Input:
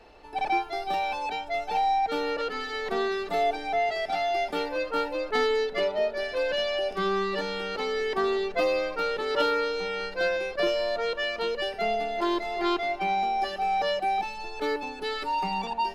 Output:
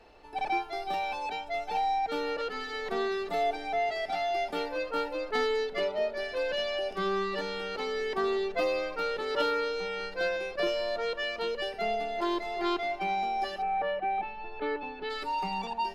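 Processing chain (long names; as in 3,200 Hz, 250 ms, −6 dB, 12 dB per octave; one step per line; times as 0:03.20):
0:13.61–0:15.09: low-pass filter 2,200 Hz → 3,700 Hz 24 dB per octave
on a send: convolution reverb RT60 2.0 s, pre-delay 4 ms, DRR 21.5 dB
on the sum: level −3.5 dB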